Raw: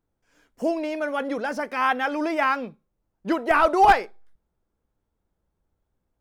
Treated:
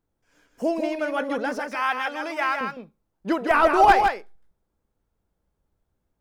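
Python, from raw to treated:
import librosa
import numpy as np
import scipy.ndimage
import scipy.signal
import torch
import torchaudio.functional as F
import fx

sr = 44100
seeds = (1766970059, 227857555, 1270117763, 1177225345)

y = fx.highpass(x, sr, hz=1000.0, slope=6, at=(1.59, 2.61))
y = y + 10.0 ** (-5.5 / 20.0) * np.pad(y, (int(158 * sr / 1000.0), 0))[:len(y)]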